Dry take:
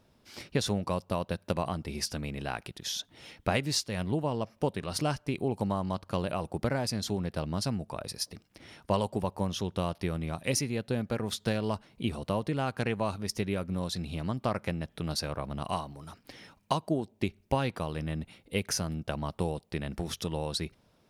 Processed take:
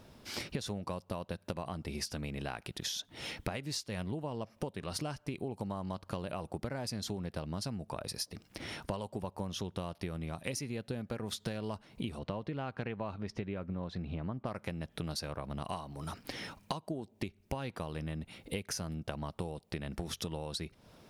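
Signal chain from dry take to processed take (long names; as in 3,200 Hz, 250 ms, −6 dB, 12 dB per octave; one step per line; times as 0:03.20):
0:12.18–0:14.45: low-pass filter 4,300 Hz → 1,700 Hz 12 dB per octave
downward compressor 8 to 1, threshold −44 dBFS, peak gain reduction 21 dB
level +8.5 dB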